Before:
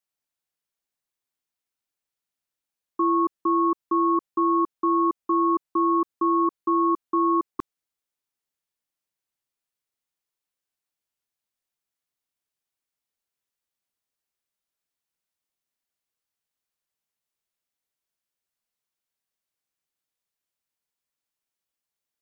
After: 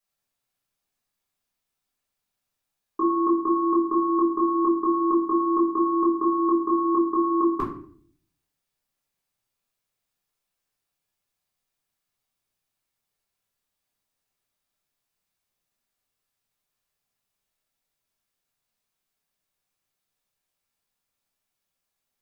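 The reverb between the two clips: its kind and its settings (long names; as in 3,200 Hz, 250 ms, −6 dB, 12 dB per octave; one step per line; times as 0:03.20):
rectangular room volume 63 cubic metres, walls mixed, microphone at 1.2 metres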